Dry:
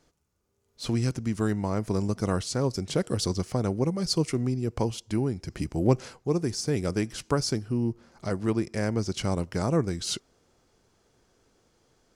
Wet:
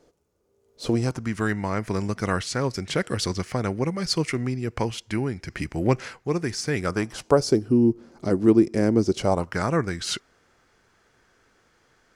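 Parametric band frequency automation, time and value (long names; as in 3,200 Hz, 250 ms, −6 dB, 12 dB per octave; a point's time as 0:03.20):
parametric band +12.5 dB 1.4 octaves
0:00.90 460 Hz
0:01.36 1,900 Hz
0:06.74 1,900 Hz
0:07.66 310 Hz
0:09.06 310 Hz
0:09.60 1,700 Hz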